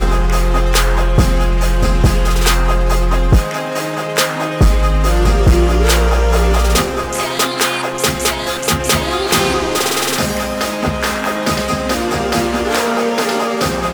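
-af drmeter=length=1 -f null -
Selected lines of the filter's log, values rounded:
Channel 1: DR: 3.3
Overall DR: 3.3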